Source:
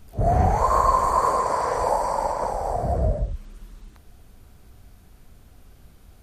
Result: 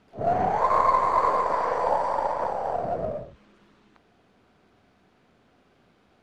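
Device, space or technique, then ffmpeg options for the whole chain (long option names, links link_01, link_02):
crystal radio: -af "highpass=230,lowpass=3300,aeval=exprs='if(lt(val(0),0),0.708*val(0),val(0))':channel_layout=same"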